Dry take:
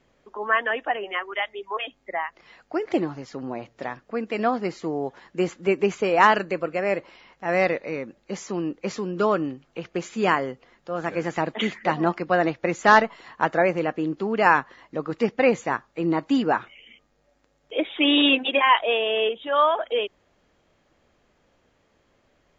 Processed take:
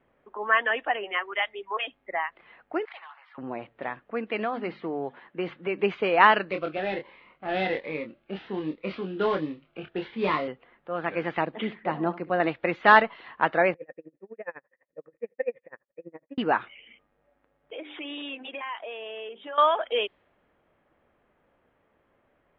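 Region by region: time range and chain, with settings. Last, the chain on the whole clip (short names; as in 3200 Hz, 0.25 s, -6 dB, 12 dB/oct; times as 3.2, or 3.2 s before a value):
2.85–3.38 steep high-pass 890 Hz + dynamic EQ 3200 Hz, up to -3 dB, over -48 dBFS, Q 1 + core saturation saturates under 3800 Hz
4.37–5.81 notches 50/100/150/200/250 Hz + compressor 2.5:1, threshold -23 dBFS
6.51–10.48 CVSD 32 kbps + doubler 26 ms -5.5 dB + cascading phaser rising 1.3 Hz
11.45–12.4 bell 2600 Hz -9.5 dB 2.9 oct + flutter echo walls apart 11.7 m, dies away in 0.24 s
13.74–16.38 vocal tract filter e + bell 160 Hz +5 dB 1.4 oct + dB-linear tremolo 12 Hz, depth 32 dB
17.74–19.58 notches 50/100/150/200/250/300/350/400 Hz + compressor 4:1, threshold -34 dBFS
whole clip: low-pass opened by the level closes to 1700 Hz, open at -17 dBFS; steep low-pass 3700 Hz 36 dB/oct; tilt +1.5 dB/oct; gain -1 dB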